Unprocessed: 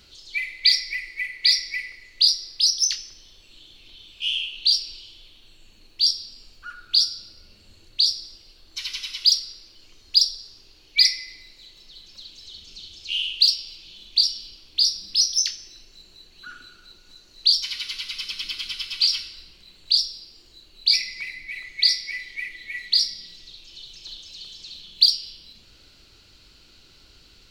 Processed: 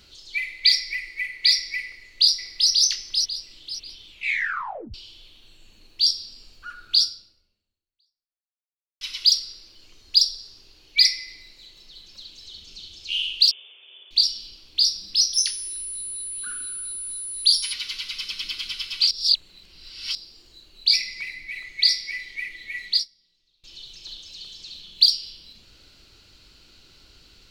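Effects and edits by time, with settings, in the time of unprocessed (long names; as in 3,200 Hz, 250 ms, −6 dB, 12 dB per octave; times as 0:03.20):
0:01.84–0:02.71: delay throw 540 ms, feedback 30%, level −3.5 dB
0:04.09: tape stop 0.85 s
0:07.04–0:09.01: fade out exponential
0:13.51–0:14.11: linear-phase brick-wall band-pass 360–3,600 Hz
0:15.33–0:17.72: steady tone 10,000 Hz −30 dBFS
0:19.11–0:20.15: reverse
0:22.92–0:23.64: expander for the loud parts 2.5 to 1, over −32 dBFS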